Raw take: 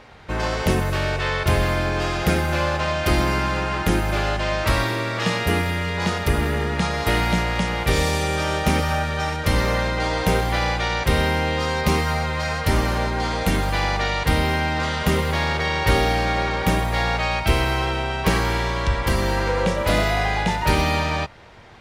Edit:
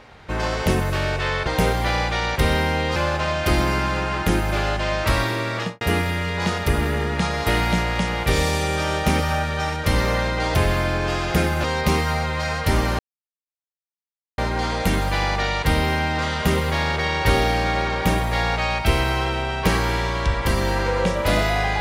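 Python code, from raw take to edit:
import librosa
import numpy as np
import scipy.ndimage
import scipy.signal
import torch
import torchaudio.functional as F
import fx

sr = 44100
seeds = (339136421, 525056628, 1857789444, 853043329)

y = fx.studio_fade_out(x, sr, start_s=5.16, length_s=0.25)
y = fx.edit(y, sr, fx.swap(start_s=1.47, length_s=1.09, other_s=10.15, other_length_s=1.49),
    fx.insert_silence(at_s=12.99, length_s=1.39), tone=tone)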